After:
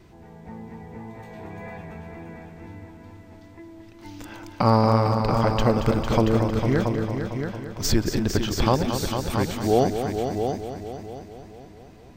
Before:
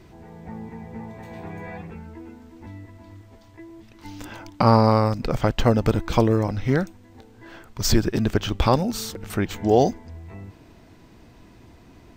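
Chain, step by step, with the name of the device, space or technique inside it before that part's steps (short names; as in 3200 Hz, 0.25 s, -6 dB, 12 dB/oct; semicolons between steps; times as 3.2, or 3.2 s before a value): multi-head tape echo (multi-head echo 0.226 s, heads all three, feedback 43%, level -9 dB; wow and flutter 21 cents); gain -2.5 dB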